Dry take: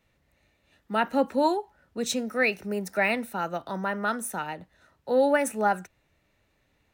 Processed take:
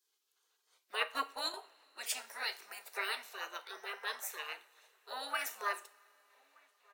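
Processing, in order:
Butterworth high-pass 540 Hz 36 dB per octave
slap from a distant wall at 210 metres, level −28 dB
0:01.01–0:01.54: transient designer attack +5 dB, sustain −11 dB
gate on every frequency bin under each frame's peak −15 dB weak
on a send at −9.5 dB: convolution reverb, pre-delay 3 ms
on the sum: level +1.5 dB

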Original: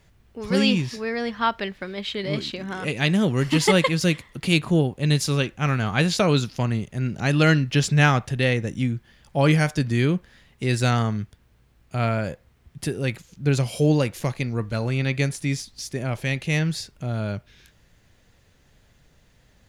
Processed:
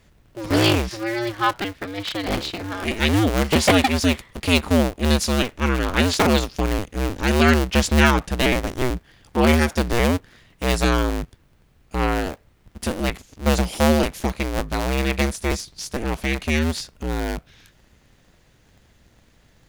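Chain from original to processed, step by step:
sub-harmonics by changed cycles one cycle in 2, inverted
level +2 dB

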